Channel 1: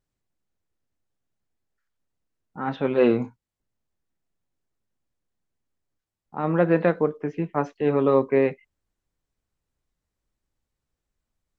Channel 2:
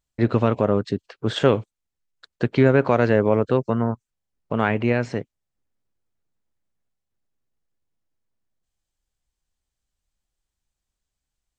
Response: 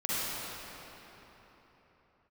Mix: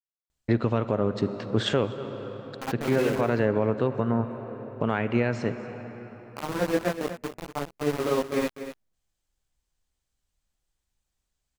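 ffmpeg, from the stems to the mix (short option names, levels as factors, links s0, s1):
-filter_complex "[0:a]tremolo=f=16:d=0.67,flanger=delay=18.5:depth=4:speed=0.35,aeval=exprs='val(0)*gte(abs(val(0)),0.0376)':c=same,volume=1,asplit=3[s0][s1][s2];[s1]volume=0.282[s3];[1:a]adelay=300,volume=1.12,asplit=3[s4][s5][s6];[s5]volume=0.0794[s7];[s6]volume=0.0944[s8];[s2]apad=whole_len=524237[s9];[s4][s9]sidechaincompress=threshold=0.00891:ratio=5:attack=22:release=173[s10];[2:a]atrim=start_sample=2205[s11];[s7][s11]afir=irnorm=-1:irlink=0[s12];[s3][s8]amix=inputs=2:normalize=0,aecho=0:1:243:1[s13];[s0][s10][s12][s13]amix=inputs=4:normalize=0,alimiter=limit=0.251:level=0:latency=1:release=441"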